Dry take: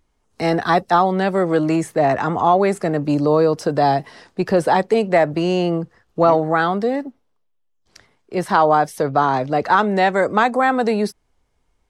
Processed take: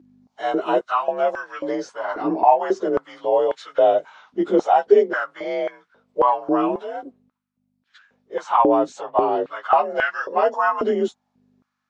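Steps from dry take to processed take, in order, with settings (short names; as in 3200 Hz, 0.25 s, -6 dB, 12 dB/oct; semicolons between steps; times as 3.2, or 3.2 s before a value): inharmonic rescaling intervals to 89%; hum 50 Hz, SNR 20 dB; stepped high-pass 3.7 Hz 310–1600 Hz; gain -5 dB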